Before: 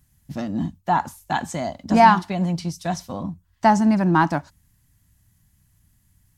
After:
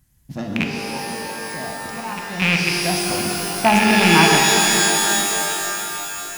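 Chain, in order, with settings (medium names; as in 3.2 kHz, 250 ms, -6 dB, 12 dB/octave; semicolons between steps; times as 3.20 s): rattle on loud lows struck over -22 dBFS, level -7 dBFS; 0.64–2.42 s: slow attack 719 ms; pitch-shifted reverb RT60 3.6 s, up +12 st, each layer -2 dB, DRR 0.5 dB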